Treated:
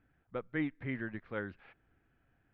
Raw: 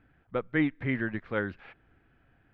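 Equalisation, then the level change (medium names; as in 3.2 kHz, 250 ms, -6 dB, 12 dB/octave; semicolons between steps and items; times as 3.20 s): distance through air 52 m; -8.0 dB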